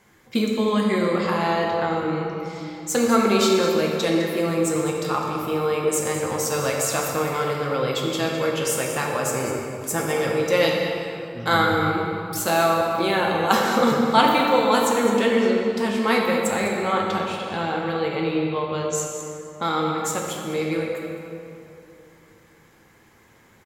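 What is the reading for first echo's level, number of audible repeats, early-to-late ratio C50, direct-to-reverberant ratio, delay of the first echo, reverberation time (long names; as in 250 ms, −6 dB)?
−12.0 dB, 1, 0.5 dB, −1.5 dB, 206 ms, 2.7 s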